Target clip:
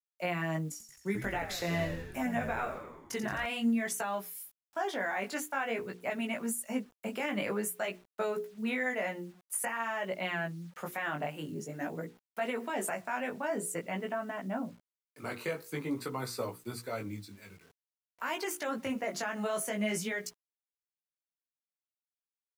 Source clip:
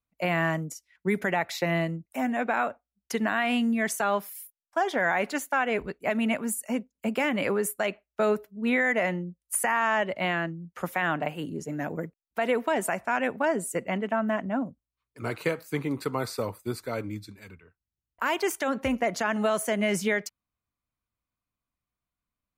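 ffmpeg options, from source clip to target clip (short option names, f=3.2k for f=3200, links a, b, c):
-filter_complex "[0:a]highpass=f=100:w=0.5412,highpass=f=100:w=1.3066,highshelf=f=4.3k:g=3.5,bandreject=f=60:t=h:w=6,bandreject=f=120:t=h:w=6,bandreject=f=180:t=h:w=6,bandreject=f=240:t=h:w=6,bandreject=f=300:t=h:w=6,bandreject=f=360:t=h:w=6,bandreject=f=420:t=h:w=6,bandreject=f=480:t=h:w=6,alimiter=limit=-19dB:level=0:latency=1:release=94,flanger=delay=16:depth=4.5:speed=0.49,acrusher=bits=9:mix=0:aa=0.000001,asettb=1/sr,asplit=3[a][b][c];[a]atrim=end=0.714[d];[b]atrim=start=0.71:end=3.46,asetpts=PTS-STARTPTS,afade=t=in:d=0.004:c=qsin,afade=t=out:st=2.746:d=0.004:c=qsin,asplit=9[e][f][g][h][i][j][k][l][m];[f]adelay=87,afreqshift=-77,volume=-9dB[n];[g]adelay=174,afreqshift=-154,volume=-13dB[o];[h]adelay=261,afreqshift=-231,volume=-17dB[p];[i]adelay=348,afreqshift=-308,volume=-21dB[q];[j]adelay=435,afreqshift=-385,volume=-25.1dB[r];[k]adelay=522,afreqshift=-462,volume=-29.1dB[s];[l]adelay=609,afreqshift=-539,volume=-33.1dB[t];[m]adelay=696,afreqshift=-616,volume=-37.1dB[u];[e][n][o][p][q][r][s][t][u]amix=inputs=9:normalize=0,atrim=end_sample=121275[v];[c]atrim=start=3.456[w];[d][v]acrossfade=d=0.004:c1=hsin:c2=qsin[x];[x][w]acrossfade=d=0.004:c1=qsin:c2=hsin,volume=-2dB"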